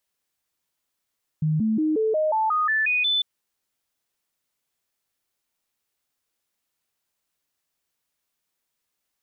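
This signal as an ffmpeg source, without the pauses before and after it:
ffmpeg -f lavfi -i "aevalsrc='0.112*clip(min(mod(t,0.18),0.18-mod(t,0.18))/0.005,0,1)*sin(2*PI*155*pow(2,floor(t/0.18)/2)*mod(t,0.18))':duration=1.8:sample_rate=44100" out.wav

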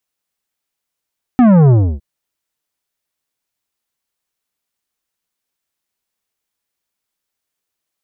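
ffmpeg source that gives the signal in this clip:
ffmpeg -f lavfi -i "aevalsrc='0.473*clip((0.61-t)/0.3,0,1)*tanh(3.76*sin(2*PI*260*0.61/log(65/260)*(exp(log(65/260)*t/0.61)-1)))/tanh(3.76)':duration=0.61:sample_rate=44100" out.wav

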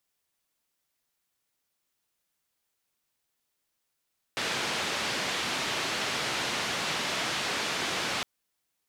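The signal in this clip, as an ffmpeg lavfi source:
ffmpeg -f lavfi -i "anoisesrc=color=white:duration=3.86:sample_rate=44100:seed=1,highpass=frequency=120,lowpass=frequency=3900,volume=-18.9dB" out.wav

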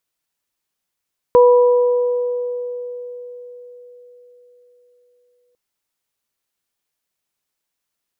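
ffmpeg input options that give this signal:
ffmpeg -f lavfi -i "aevalsrc='0.501*pow(10,-3*t/4.62)*sin(2*PI*490*t)+0.2*pow(10,-3*t/2.11)*sin(2*PI*980*t)':duration=4.2:sample_rate=44100" out.wav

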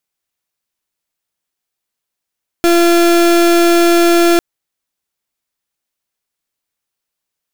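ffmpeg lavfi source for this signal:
ffmpeg -f lavfi -i "aevalsrc='0.335*(2*lt(mod(342*t,1),0.35)-1)':duration=1.75:sample_rate=44100" out.wav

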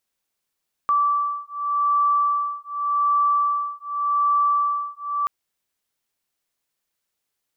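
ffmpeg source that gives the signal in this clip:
ffmpeg -f lavfi -i "aevalsrc='0.0841*(sin(2*PI*1160*t)+sin(2*PI*1160.86*t))':duration=4.38:sample_rate=44100" out.wav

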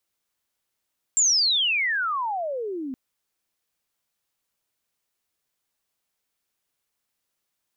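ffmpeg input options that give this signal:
ffmpeg -f lavfi -i "aevalsrc='pow(10,(-16-13*t/1.77)/20)*sin(2*PI*7500*1.77/log(250/7500)*(exp(log(250/7500)*t/1.77)-1))':duration=1.77:sample_rate=44100" out.wav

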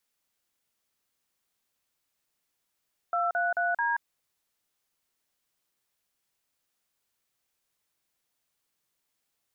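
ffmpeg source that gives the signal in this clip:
ffmpeg -f lavfi -i "aevalsrc='0.0447*clip(min(mod(t,0.219),0.179-mod(t,0.219))/0.002,0,1)*(eq(floor(t/0.219),0)*(sin(2*PI*697*mod(t,0.219))+sin(2*PI*1336*mod(t,0.219)))+eq(floor(t/0.219),1)*(sin(2*PI*697*mod(t,0.219))+sin(2*PI*1477*mod(t,0.219)))+eq(floor(t/0.219),2)*(sin(2*PI*697*mod(t,0.219))+sin(2*PI*1477*mod(t,0.219)))+eq(floor(t/0.219),3)*(sin(2*PI*941*mod(t,0.219))+sin(2*PI*1633*mod(t,0.219))))':duration=0.876:sample_rate=44100" out.wav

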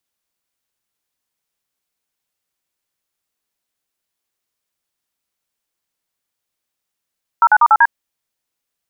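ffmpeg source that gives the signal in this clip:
ffmpeg -f lavfi -i "aevalsrc='0.355*clip(min(mod(t,0.096),0.051-mod(t,0.096))/0.002,0,1)*(eq(floor(t/0.096),0)*(sin(2*PI*941*mod(t,0.096))+sin(2*PI*1336*mod(t,0.096)))+eq(floor(t/0.096),1)*(sin(2*PI*852*mod(t,0.096))+sin(2*PI*1477*mod(t,0.096)))+eq(floor(t/0.096),2)*(sin(2*PI*941*mod(t,0.096))+sin(2*PI*1209*mod(t,0.096)))+eq(floor(t/0.096),3)*(sin(2*PI*852*mod(t,0.096))+sin(2*PI*1336*mod(t,0.096)))+eq(floor(t/0.096),4)*(sin(2*PI*941*mod(t,0.096))+sin(2*PI*1633*mod(t,0.096))))':duration=0.48:sample_rate=44100" out.wav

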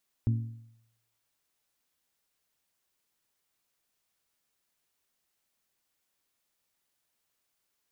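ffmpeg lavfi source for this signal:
ffmpeg -f lavfi -i "aevalsrc='0.0891*pow(10,-3*t/0.76)*sin(2*PI*114*t)+0.0335*pow(10,-3*t/0.617)*sin(2*PI*228*t)+0.0126*pow(10,-3*t/0.584)*sin(2*PI*273.6*t)+0.00473*pow(10,-3*t/0.547)*sin(2*PI*342*t)':duration=1.55:sample_rate=44100" out.wav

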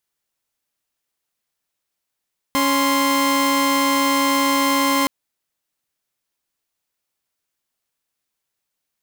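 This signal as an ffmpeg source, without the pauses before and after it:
ffmpeg -f lavfi -i "aevalsrc='0.158*((2*mod(277.18*t,1)-1)+(2*mod(1046.5*t,1)-1))':duration=2.52:sample_rate=44100" out.wav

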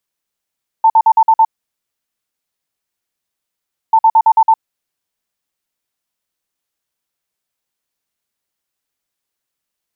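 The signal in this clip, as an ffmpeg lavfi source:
ffmpeg -f lavfi -i "aevalsrc='0.562*sin(2*PI*892*t)*clip(min(mod(mod(t,3.09),0.11),0.06-mod(mod(t,3.09),0.11))/0.005,0,1)*lt(mod(t,3.09),0.66)':duration=6.18:sample_rate=44100" out.wav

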